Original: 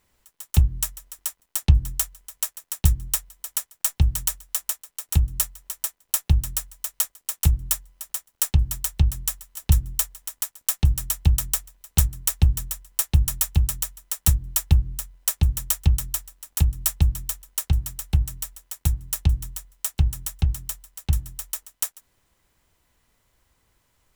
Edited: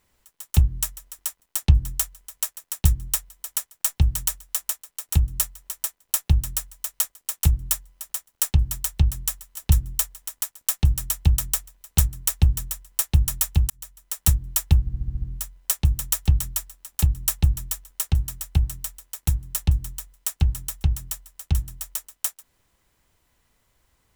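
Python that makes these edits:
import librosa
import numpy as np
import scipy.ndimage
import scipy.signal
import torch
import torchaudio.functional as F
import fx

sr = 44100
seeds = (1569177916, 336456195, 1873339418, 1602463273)

y = fx.edit(x, sr, fx.fade_in_span(start_s=13.7, length_s=0.53),
    fx.stutter(start_s=14.8, slice_s=0.07, count=7), tone=tone)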